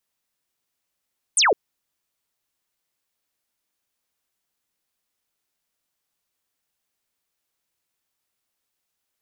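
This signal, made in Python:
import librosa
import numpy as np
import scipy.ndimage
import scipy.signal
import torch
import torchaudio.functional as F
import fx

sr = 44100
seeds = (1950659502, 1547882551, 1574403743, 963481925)

y = fx.laser_zap(sr, level_db=-14, start_hz=10000.0, end_hz=360.0, length_s=0.16, wave='sine')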